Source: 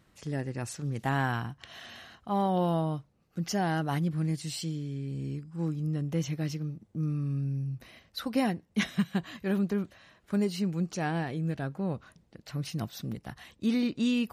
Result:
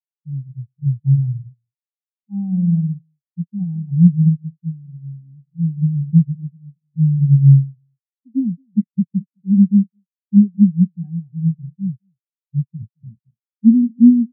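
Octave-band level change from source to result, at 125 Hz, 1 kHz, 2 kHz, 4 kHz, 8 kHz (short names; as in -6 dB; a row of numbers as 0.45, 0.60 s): +15.5 dB, under -25 dB, under -40 dB, under -40 dB, under -35 dB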